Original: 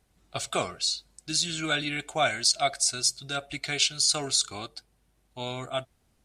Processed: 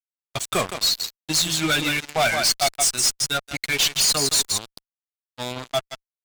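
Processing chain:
spectral dynamics exaggerated over time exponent 1.5
high-shelf EQ 3,500 Hz +4.5 dB
single-tap delay 165 ms −10 dB
fuzz pedal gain 31 dB, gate −38 dBFS
level −3 dB

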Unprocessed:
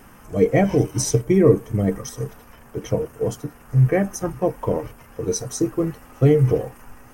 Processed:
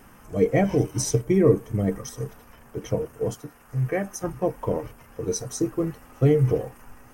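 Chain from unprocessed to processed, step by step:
0:03.34–0:04.24: low-shelf EQ 390 Hz −7 dB
level −3.5 dB

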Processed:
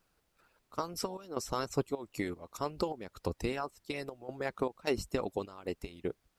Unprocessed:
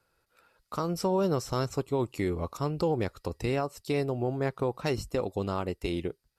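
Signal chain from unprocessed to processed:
harmonic and percussive parts rebalanced harmonic −16 dB
gate pattern "x.x.xx.xx" 77 BPM −12 dB
background noise pink −77 dBFS

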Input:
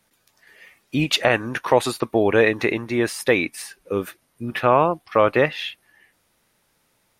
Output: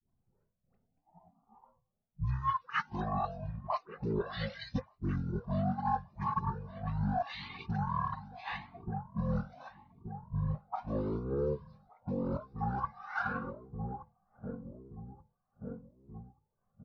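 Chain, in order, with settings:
spectral magnitudes quantised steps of 30 dB
parametric band 110 Hz −9.5 dB 2.2 octaves
repeating echo 504 ms, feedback 55%, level −17.5 dB
rotating-speaker cabinet horn 5.5 Hz
all-pass dispersion highs, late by 44 ms, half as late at 1,500 Hz
transient designer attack +7 dB, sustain −8 dB
parametric band 710 Hz −13.5 dB 0.21 octaves
low-pass that shuts in the quiet parts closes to 650 Hz, open at −23 dBFS
wrong playback speed 78 rpm record played at 33 rpm
reversed playback
downward compressor 6 to 1, threshold −32 dBFS, peak gain reduction 20 dB
reversed playback
flanger whose copies keep moving one way rising 0.81 Hz
level +5.5 dB

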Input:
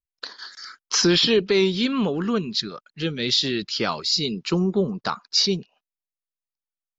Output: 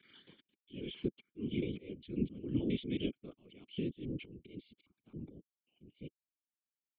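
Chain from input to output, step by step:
slices reordered back to front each 135 ms, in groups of 5
high-pass filter 160 Hz 12 dB per octave
downward compressor 5 to 1, threshold −27 dBFS, peak gain reduction 11 dB
volume swells 388 ms
formant resonators in series i
random phases in short frames
level +5 dB

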